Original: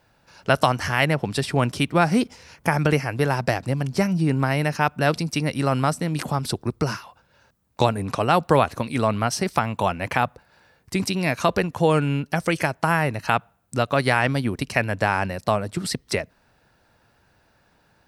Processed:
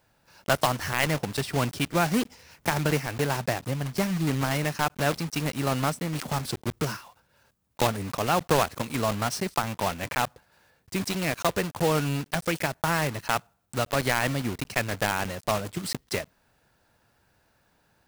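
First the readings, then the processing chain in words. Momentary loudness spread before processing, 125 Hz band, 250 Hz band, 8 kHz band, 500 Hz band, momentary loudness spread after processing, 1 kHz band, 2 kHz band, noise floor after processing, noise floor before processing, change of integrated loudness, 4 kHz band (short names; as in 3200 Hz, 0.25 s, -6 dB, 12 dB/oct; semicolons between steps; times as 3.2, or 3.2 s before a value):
7 LU, -5.5 dB, -5.5 dB, +1.0 dB, -5.5 dB, 7 LU, -5.5 dB, -4.5 dB, -68 dBFS, -63 dBFS, -5.0 dB, -2.0 dB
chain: block floating point 3-bit; gain -5.5 dB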